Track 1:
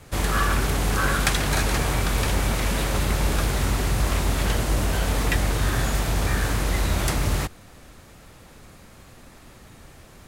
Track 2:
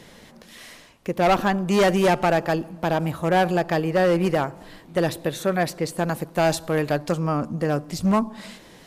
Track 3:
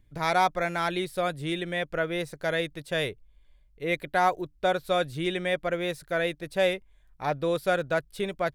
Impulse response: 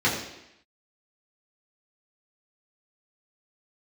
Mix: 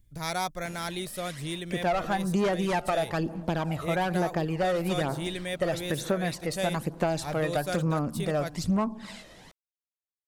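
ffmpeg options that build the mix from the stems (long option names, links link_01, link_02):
-filter_complex "[1:a]lowpass=11000,aphaser=in_gain=1:out_gain=1:delay=1.6:decay=0.5:speed=1.1:type=sinusoidal,adelay=650,volume=-4dB[link_01];[2:a]bass=frequency=250:gain=8,treble=frequency=4000:gain=15,volume=-8dB[link_02];[link_01][link_02]amix=inputs=2:normalize=0,acompressor=threshold=-23dB:ratio=6"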